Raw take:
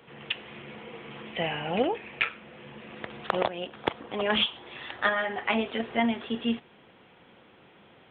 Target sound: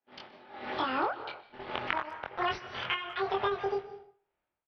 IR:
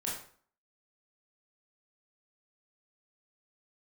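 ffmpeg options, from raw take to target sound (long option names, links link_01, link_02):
-filter_complex "[0:a]aemphasis=mode=reproduction:type=50fm,agate=range=-37dB:threshold=-44dB:ratio=16:detection=peak,tremolo=f=0.65:d=0.89,dynaudnorm=framelen=190:gausssize=7:maxgain=10dB,asetrate=76440,aresample=44100,asplit=2[link_01][link_02];[1:a]atrim=start_sample=2205,afade=type=out:start_time=0.29:duration=0.01,atrim=end_sample=13230,adelay=123[link_03];[link_02][link_03]afir=irnorm=-1:irlink=0,volume=-21dB[link_04];[link_01][link_04]amix=inputs=2:normalize=0,asubboost=boost=11:cutoff=76,acompressor=threshold=-28dB:ratio=12,lowpass=frequency=2900:width=0.5412,lowpass=frequency=2900:width=1.3066,asplit=2[link_05][link_06];[link_06]adelay=23,volume=-2dB[link_07];[link_05][link_07]amix=inputs=2:normalize=0,asplit=2[link_08][link_09];[link_09]adelay=200,highpass=300,lowpass=3400,asoftclip=type=hard:threshold=-21dB,volume=-25dB[link_10];[link_08][link_10]amix=inputs=2:normalize=0"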